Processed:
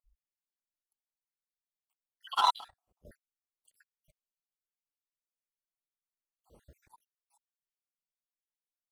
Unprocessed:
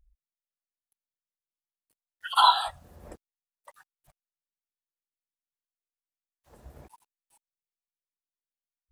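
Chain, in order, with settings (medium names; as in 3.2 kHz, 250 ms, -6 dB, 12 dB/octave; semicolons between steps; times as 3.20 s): random holes in the spectrogram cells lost 57%; 2.35–3.05 s: power-law waveshaper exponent 1.4; trim -4.5 dB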